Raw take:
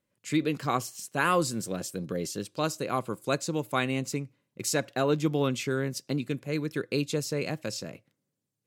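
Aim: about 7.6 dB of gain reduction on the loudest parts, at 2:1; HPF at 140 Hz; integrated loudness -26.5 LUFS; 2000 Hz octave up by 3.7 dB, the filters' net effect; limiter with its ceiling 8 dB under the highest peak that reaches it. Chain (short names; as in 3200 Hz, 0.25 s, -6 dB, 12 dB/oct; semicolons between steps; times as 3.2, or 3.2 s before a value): HPF 140 Hz; bell 2000 Hz +5 dB; compressor 2:1, threshold -34 dBFS; gain +10.5 dB; limiter -13.5 dBFS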